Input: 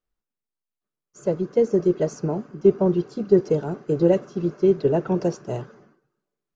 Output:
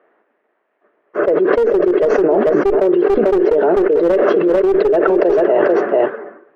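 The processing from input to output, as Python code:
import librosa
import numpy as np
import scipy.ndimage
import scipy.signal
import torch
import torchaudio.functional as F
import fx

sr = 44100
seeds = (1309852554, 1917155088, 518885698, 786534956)

y = fx.dynamic_eq(x, sr, hz=430.0, q=2.0, threshold_db=-28.0, ratio=4.0, max_db=5)
y = fx.env_lowpass(y, sr, base_hz=1500.0, full_db=-14.5)
y = fx.cabinet(y, sr, low_hz=300.0, low_slope=24, high_hz=2900.0, hz=(410.0, 630.0, 1800.0), db=(4, 8, 8))
y = fx.clip_asym(y, sr, top_db=-9.0, bottom_db=-1.0)
y = y + 10.0 ** (-14.5 / 20.0) * np.pad(y, (int(442 * sr / 1000.0), 0))[:len(y)]
y = fx.env_flatten(y, sr, amount_pct=100)
y = y * 10.0 ** (-6.5 / 20.0)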